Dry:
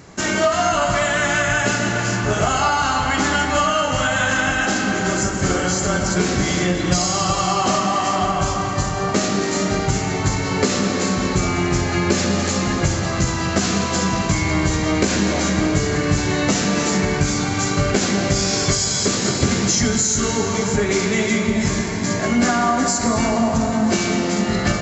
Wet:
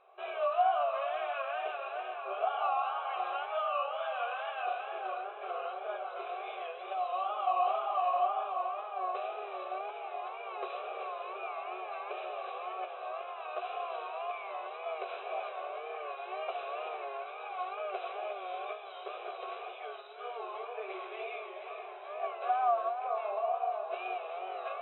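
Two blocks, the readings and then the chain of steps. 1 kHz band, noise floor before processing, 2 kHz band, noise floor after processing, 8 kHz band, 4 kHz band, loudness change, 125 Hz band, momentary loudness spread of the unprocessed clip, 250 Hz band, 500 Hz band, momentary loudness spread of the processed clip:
−10.5 dB, −23 dBFS, −22.5 dB, −45 dBFS, below −40 dB, −25.5 dB, −17.5 dB, below −40 dB, 3 LU, below −35 dB, −14.0 dB, 11 LU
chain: tape wow and flutter 120 cents
formant filter a
brick-wall band-pass 360–4,000 Hz
level −5 dB

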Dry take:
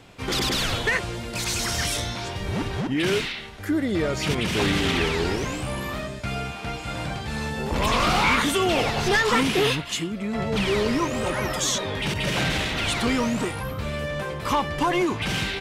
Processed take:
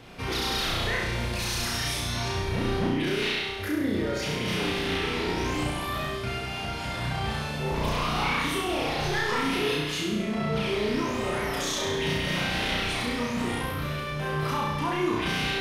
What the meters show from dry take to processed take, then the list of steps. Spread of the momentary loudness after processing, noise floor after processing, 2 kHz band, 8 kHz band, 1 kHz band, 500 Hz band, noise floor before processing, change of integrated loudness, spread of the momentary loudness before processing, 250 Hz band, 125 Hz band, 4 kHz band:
4 LU, −33 dBFS, −3.5 dB, −6.0 dB, −3.5 dB, −3.5 dB, −35 dBFS, −3.5 dB, 10 LU, −3.5 dB, −2.5 dB, −3.0 dB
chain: parametric band 7,500 Hz −9 dB 0.29 octaves
brickwall limiter −24.5 dBFS, peak gain reduction 11.5 dB
flutter between parallel walls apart 5.7 metres, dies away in 1 s

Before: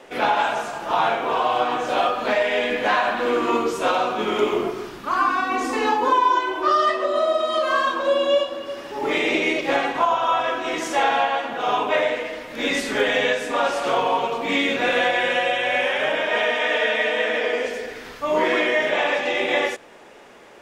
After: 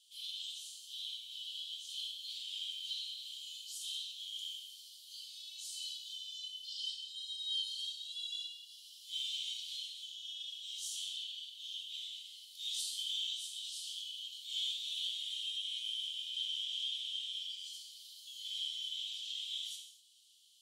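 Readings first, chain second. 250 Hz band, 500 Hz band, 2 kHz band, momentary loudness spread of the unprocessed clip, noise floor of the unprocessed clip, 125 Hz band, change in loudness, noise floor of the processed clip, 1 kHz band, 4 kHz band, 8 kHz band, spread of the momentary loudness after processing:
below −40 dB, below −40 dB, −37.5 dB, 6 LU, −39 dBFS, below −40 dB, −18.5 dB, −56 dBFS, below −40 dB, −7.0 dB, −6.5 dB, 10 LU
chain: Chebyshev high-pass with heavy ripple 3,000 Hz, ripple 6 dB
reverb whose tail is shaped and stops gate 280 ms falling, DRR −0.5 dB
level −5.5 dB

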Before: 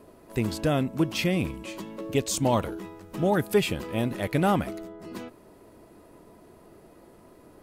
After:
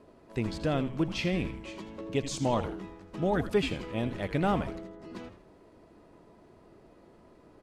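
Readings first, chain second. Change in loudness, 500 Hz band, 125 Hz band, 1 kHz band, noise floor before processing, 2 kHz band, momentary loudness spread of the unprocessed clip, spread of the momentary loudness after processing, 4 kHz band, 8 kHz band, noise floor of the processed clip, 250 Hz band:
−4.5 dB, −4.5 dB, −4.5 dB, −4.5 dB, −54 dBFS, −4.0 dB, 16 LU, 15 LU, −5.0 dB, −9.5 dB, −58 dBFS, −4.0 dB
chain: low-pass filter 5,800 Hz 12 dB per octave
echo with shifted repeats 81 ms, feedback 40%, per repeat −140 Hz, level −11 dB
level −4.5 dB

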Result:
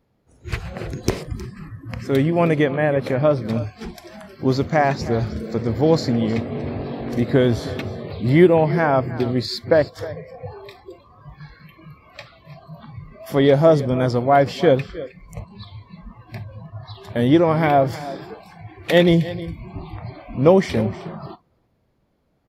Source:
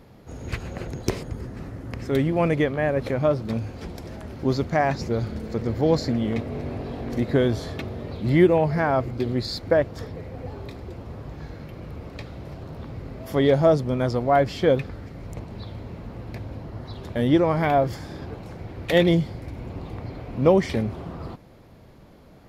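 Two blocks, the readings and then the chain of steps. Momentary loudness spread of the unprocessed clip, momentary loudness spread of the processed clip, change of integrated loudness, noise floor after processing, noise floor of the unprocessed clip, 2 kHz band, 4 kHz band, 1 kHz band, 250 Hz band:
18 LU, 21 LU, +4.0 dB, −65 dBFS, −49 dBFS, +4.0 dB, +4.0 dB, +4.0 dB, +4.0 dB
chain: single-tap delay 313 ms −16 dB
noise reduction from a noise print of the clip's start 21 dB
level +4 dB

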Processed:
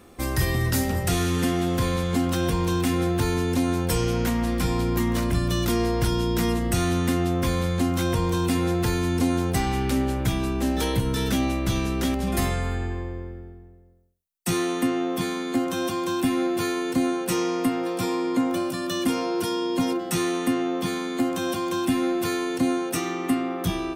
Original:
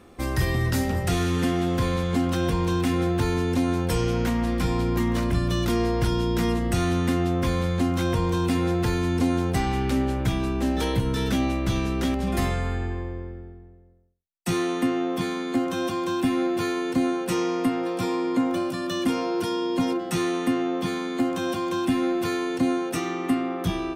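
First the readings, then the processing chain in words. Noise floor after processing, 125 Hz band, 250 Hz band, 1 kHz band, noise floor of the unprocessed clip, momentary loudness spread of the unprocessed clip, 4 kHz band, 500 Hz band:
−39 dBFS, 0.0 dB, 0.0 dB, 0.0 dB, −39 dBFS, 3 LU, +2.0 dB, 0.0 dB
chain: high-shelf EQ 7,000 Hz +9.5 dB

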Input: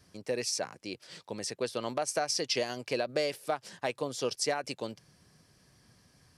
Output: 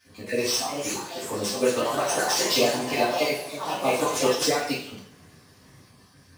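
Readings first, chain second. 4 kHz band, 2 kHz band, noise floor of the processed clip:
+8.5 dB, +9.5 dB, −55 dBFS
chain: time-frequency cells dropped at random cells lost 34%
delay with pitch and tempo change per echo 441 ms, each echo +3 semitones, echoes 3, each echo −6 dB
in parallel at −6 dB: sample-rate reduction 9,000 Hz, jitter 0%
on the sum: high-pass filter 72 Hz
on a send: backwards echo 100 ms −18.5 dB
on the sum: coupled-rooms reverb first 0.57 s, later 1.8 s, from −28 dB, DRR −10 dB
level −2 dB

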